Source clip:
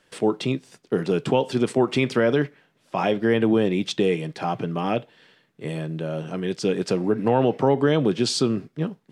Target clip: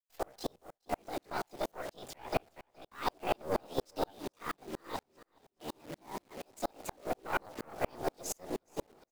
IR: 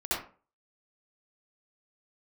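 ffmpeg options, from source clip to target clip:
-filter_complex "[0:a]agate=range=-15dB:threshold=-47dB:ratio=16:detection=peak,bandreject=frequency=60:width_type=h:width=6,bandreject=frequency=120:width_type=h:width=6,bandreject=frequency=180:width_type=h:width=6,bandreject=frequency=240:width_type=h:width=6,bandreject=frequency=300:width_type=h:width=6,bandreject=frequency=360:width_type=h:width=6,bandreject=frequency=420:width_type=h:width=6,bandreject=frequency=480:width_type=h:width=6,bandreject=frequency=540:width_type=h:width=6,afftfilt=real='hypot(re,im)*cos(2*PI*random(0))':imag='hypot(re,im)*sin(2*PI*random(1))':win_size=512:overlap=0.75,asetrate=64194,aresample=44100,atempo=0.686977,afreqshift=79,aeval=exprs='(tanh(10*val(0)+0.75)-tanh(0.75))/10':channel_layout=same,acrusher=bits=8:dc=4:mix=0:aa=0.000001,asplit=2[link_01][link_02];[link_02]aecho=0:1:420|840|1260|1680:0.0944|0.0519|0.0286|0.0157[link_03];[link_01][link_03]amix=inputs=2:normalize=0,aeval=exprs='val(0)*pow(10,-39*if(lt(mod(-4.2*n/s,1),2*abs(-4.2)/1000),1-mod(-4.2*n/s,1)/(2*abs(-4.2)/1000),(mod(-4.2*n/s,1)-2*abs(-4.2)/1000)/(1-2*abs(-4.2)/1000))/20)':channel_layout=same,volume=3dB"

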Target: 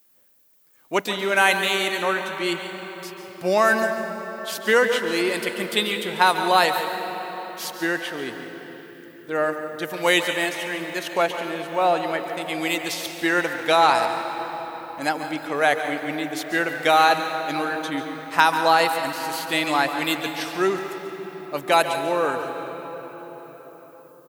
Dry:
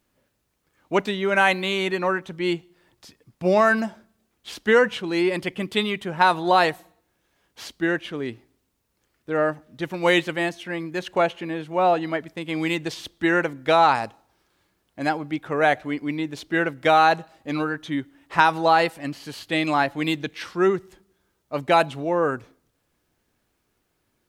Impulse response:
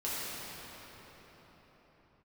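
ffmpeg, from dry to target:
-filter_complex "[0:a]aemphasis=mode=production:type=bsi,aecho=1:1:141|173:0.211|0.15,asplit=2[link_01][link_02];[1:a]atrim=start_sample=2205,adelay=137[link_03];[link_02][link_03]afir=irnorm=-1:irlink=0,volume=-14dB[link_04];[link_01][link_04]amix=inputs=2:normalize=0"

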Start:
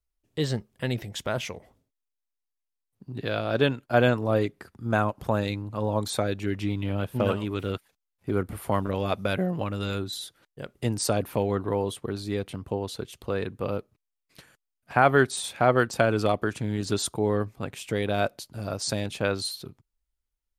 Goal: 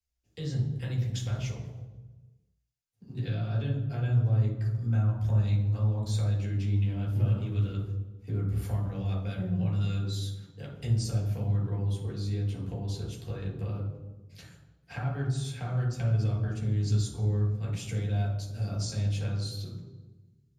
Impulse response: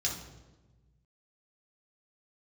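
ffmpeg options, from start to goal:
-filter_complex "[0:a]acrossover=split=150[link_01][link_02];[link_02]acompressor=threshold=-38dB:ratio=6[link_03];[link_01][link_03]amix=inputs=2:normalize=0[link_04];[1:a]atrim=start_sample=2205[link_05];[link_04][link_05]afir=irnorm=-1:irlink=0,volume=-5.5dB"

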